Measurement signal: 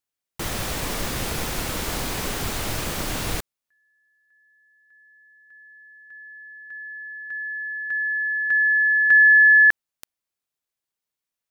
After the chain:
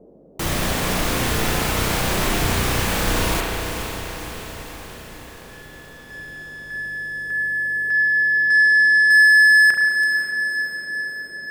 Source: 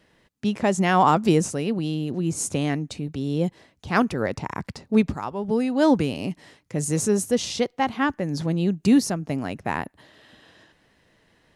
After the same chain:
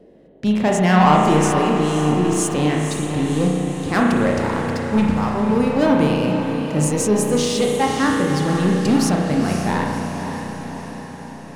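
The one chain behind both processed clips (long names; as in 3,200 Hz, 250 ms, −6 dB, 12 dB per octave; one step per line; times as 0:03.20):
mains hum 50 Hz, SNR 31 dB
leveller curve on the samples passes 2
on a send: feedback delay with all-pass diffusion 523 ms, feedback 60%, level −7.5 dB
on the sum: spring reverb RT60 1.6 s, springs 33 ms, chirp 30 ms, DRR −0.5 dB
noise in a band 170–580 Hz −46 dBFS
level −3.5 dB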